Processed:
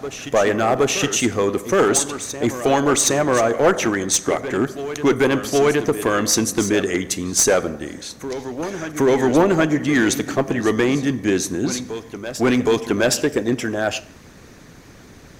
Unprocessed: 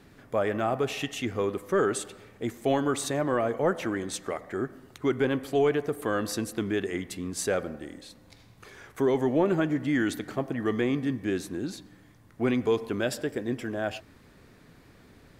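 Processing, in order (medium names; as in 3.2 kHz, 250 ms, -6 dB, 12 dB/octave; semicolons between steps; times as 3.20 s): peaking EQ 6.2 kHz +11.5 dB 0.35 oct; Schroeder reverb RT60 0.51 s, combs from 28 ms, DRR 16 dB; harmonic-percussive split percussive +6 dB; one-sided clip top -18.5 dBFS; on a send: reverse echo 768 ms -12 dB; on the sum: trim +7 dB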